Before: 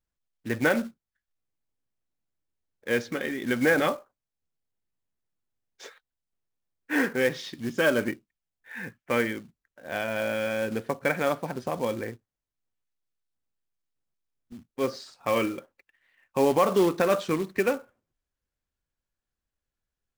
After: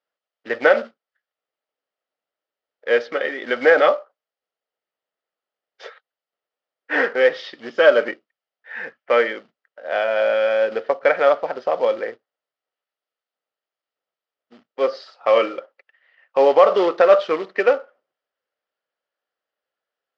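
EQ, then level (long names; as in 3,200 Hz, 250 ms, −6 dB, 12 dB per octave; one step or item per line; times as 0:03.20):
loudspeaker in its box 370–4,900 Hz, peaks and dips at 460 Hz +5 dB, 790 Hz +3 dB, 1,300 Hz +10 dB, 1,900 Hz +7 dB, 3,000 Hz +7 dB, 4,900 Hz +5 dB
parametric band 600 Hz +11.5 dB 0.76 octaves
0.0 dB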